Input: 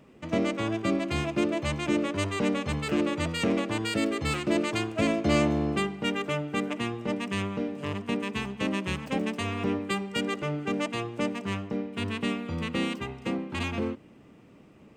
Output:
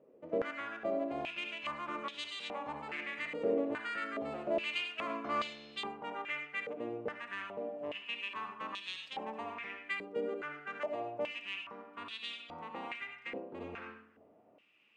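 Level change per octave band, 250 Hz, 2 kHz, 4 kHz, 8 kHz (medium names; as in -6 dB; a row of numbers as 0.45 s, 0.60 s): -17.0 dB, -6.0 dB, -7.5 dB, under -20 dB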